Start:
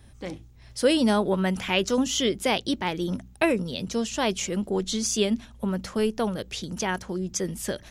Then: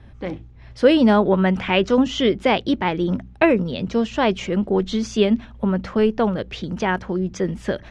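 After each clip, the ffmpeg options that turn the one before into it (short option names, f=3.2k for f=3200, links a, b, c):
-af "lowpass=2.5k,volume=7dB"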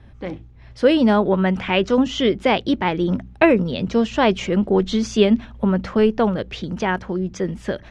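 -af "dynaudnorm=f=420:g=9:m=11.5dB,volume=-1dB"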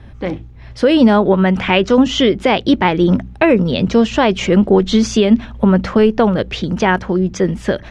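-af "alimiter=limit=-10dB:level=0:latency=1:release=170,volume=8dB"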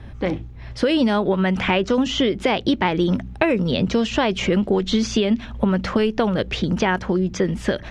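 -filter_complex "[0:a]acrossover=split=2000|5300[a][b][c];[a]acompressor=threshold=-17dB:ratio=4[d];[b]acompressor=threshold=-27dB:ratio=4[e];[c]acompressor=threshold=-41dB:ratio=4[f];[d][e][f]amix=inputs=3:normalize=0"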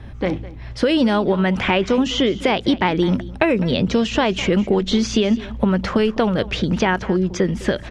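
-af "aecho=1:1:206:0.126,volume=1.5dB"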